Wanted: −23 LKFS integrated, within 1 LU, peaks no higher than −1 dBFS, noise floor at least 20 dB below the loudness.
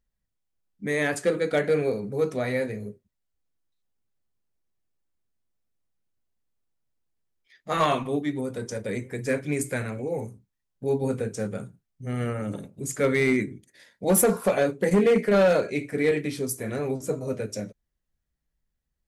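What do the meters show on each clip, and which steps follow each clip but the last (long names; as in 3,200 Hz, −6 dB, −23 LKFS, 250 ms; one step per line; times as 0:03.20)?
share of clipped samples 0.4%; peaks flattened at −14.5 dBFS; integrated loudness −26.0 LKFS; sample peak −14.5 dBFS; target loudness −23.0 LKFS
→ clipped peaks rebuilt −14.5 dBFS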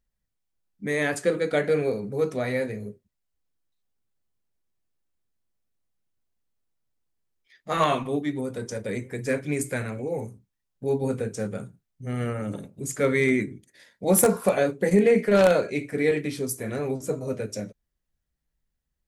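share of clipped samples 0.0%; integrated loudness −25.5 LKFS; sample peak −5.5 dBFS; target loudness −23.0 LKFS
→ level +2.5 dB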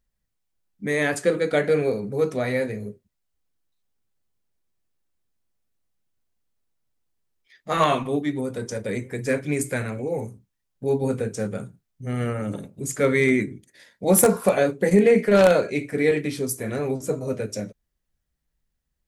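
integrated loudness −23.0 LKFS; sample peak −3.0 dBFS; background noise floor −78 dBFS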